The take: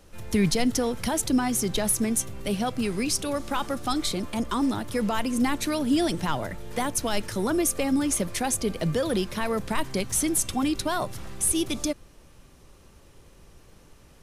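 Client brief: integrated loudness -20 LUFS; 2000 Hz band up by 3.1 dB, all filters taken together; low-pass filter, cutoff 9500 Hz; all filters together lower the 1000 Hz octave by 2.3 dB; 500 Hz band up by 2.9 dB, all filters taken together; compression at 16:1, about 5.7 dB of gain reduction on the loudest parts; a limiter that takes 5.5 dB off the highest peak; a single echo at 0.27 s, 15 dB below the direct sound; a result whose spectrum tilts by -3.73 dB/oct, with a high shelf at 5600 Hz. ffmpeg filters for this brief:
-af "lowpass=9.5k,equalizer=f=500:t=o:g=5,equalizer=f=1k:t=o:g=-6.5,equalizer=f=2k:t=o:g=5,highshelf=f=5.6k:g=4,acompressor=threshold=-23dB:ratio=16,alimiter=limit=-19.5dB:level=0:latency=1,aecho=1:1:270:0.178,volume=9.5dB"

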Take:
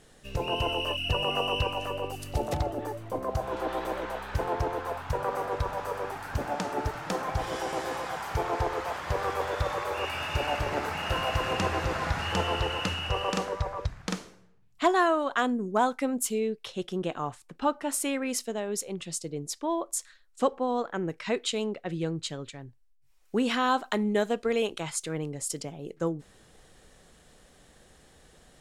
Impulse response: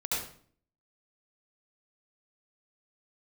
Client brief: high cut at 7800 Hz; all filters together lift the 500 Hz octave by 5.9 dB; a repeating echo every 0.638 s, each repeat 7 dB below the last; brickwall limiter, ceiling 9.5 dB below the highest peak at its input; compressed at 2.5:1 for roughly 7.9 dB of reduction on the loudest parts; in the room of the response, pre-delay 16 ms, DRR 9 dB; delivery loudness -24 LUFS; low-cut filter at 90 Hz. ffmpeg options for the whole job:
-filter_complex "[0:a]highpass=90,lowpass=7.8k,equalizer=f=500:t=o:g=7,acompressor=threshold=-26dB:ratio=2.5,alimiter=limit=-22.5dB:level=0:latency=1,aecho=1:1:638|1276|1914|2552|3190:0.447|0.201|0.0905|0.0407|0.0183,asplit=2[a][b];[1:a]atrim=start_sample=2205,adelay=16[c];[b][c]afir=irnorm=-1:irlink=0,volume=-15dB[d];[a][d]amix=inputs=2:normalize=0,volume=7.5dB"

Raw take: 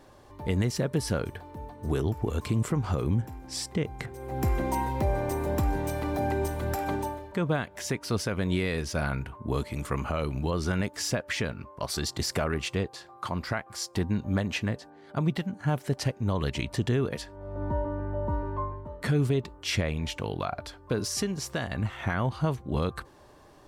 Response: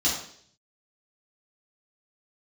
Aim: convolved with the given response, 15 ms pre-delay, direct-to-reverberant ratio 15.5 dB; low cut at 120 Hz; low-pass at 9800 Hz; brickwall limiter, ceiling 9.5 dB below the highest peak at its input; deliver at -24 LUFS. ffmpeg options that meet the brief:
-filter_complex "[0:a]highpass=120,lowpass=9.8k,alimiter=limit=-23dB:level=0:latency=1,asplit=2[a][b];[1:a]atrim=start_sample=2205,adelay=15[c];[b][c]afir=irnorm=-1:irlink=0,volume=-26.5dB[d];[a][d]amix=inputs=2:normalize=0,volume=10.5dB"

